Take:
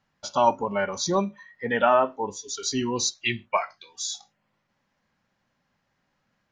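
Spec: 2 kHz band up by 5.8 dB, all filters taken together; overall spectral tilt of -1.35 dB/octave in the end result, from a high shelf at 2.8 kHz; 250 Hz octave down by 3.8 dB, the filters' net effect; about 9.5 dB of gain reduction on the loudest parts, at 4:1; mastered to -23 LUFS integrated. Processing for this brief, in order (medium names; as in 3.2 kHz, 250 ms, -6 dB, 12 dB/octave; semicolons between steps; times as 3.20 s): peaking EQ 250 Hz -5 dB; peaking EQ 2 kHz +4.5 dB; treble shelf 2.8 kHz +7 dB; compression 4:1, threshold -25 dBFS; trim +6 dB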